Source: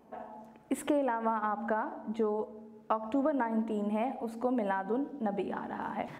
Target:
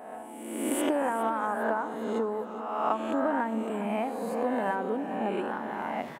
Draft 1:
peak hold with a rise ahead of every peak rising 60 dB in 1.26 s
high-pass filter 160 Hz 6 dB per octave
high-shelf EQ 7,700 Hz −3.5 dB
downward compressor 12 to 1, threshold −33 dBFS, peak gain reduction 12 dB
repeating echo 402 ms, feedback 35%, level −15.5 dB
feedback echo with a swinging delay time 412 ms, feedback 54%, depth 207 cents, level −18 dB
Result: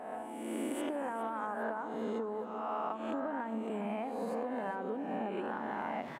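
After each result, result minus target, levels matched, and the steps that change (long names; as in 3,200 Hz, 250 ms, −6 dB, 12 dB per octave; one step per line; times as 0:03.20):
downward compressor: peak gain reduction +12 dB; 8,000 Hz band −5.0 dB
remove: downward compressor 12 to 1, threshold −33 dBFS, peak gain reduction 12 dB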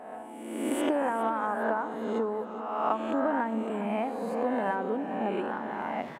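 8,000 Hz band −6.0 dB
change: high-shelf EQ 7,700 Hz +7 dB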